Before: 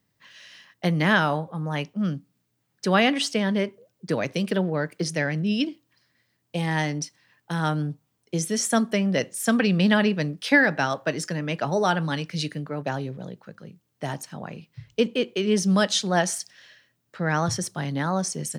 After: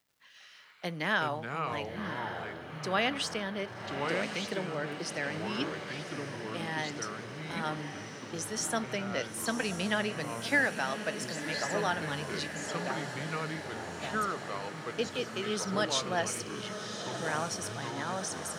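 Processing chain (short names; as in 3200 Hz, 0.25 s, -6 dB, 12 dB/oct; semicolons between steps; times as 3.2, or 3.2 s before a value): HPF 470 Hz 6 dB/oct; crackle 380/s -54 dBFS; on a send: diffused feedback echo 1.093 s, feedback 67%, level -8.5 dB; on the sum: echoes that change speed 89 ms, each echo -5 st, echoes 2, each echo -6 dB; gain -7.5 dB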